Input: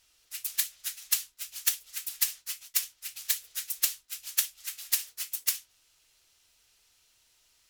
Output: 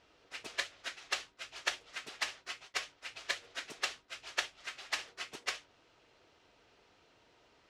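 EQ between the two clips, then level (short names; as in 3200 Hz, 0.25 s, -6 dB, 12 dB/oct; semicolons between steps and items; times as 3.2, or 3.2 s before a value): band-pass 390 Hz, Q 0.78; air absorption 91 m; +17.5 dB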